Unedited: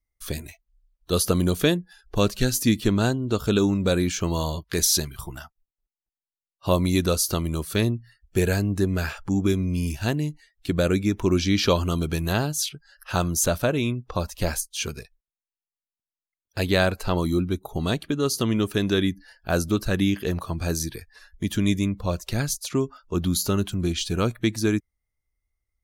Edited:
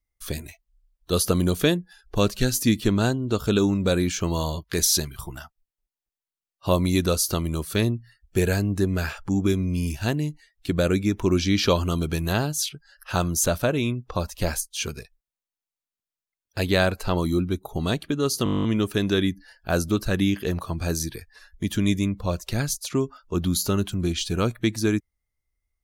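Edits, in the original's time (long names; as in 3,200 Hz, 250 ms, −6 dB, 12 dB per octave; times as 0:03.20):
0:18.44: stutter 0.02 s, 11 plays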